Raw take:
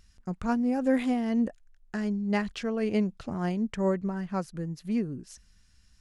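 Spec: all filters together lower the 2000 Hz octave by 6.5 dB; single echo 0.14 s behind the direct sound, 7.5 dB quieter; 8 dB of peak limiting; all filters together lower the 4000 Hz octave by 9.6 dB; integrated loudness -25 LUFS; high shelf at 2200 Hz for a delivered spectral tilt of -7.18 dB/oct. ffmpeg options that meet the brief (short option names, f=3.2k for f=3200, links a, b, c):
-af "equalizer=f=2k:t=o:g=-4,highshelf=f=2.2k:g=-5,equalizer=f=4k:t=o:g=-7,alimiter=limit=-23dB:level=0:latency=1,aecho=1:1:140:0.422,volume=7dB"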